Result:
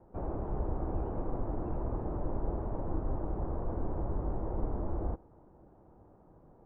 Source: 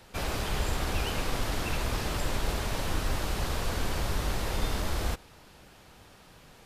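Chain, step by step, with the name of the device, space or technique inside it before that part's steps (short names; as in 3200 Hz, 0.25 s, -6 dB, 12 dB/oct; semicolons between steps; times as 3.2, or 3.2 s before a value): under water (LPF 920 Hz 24 dB/oct; bell 330 Hz +6.5 dB 0.33 oct); gain -3.5 dB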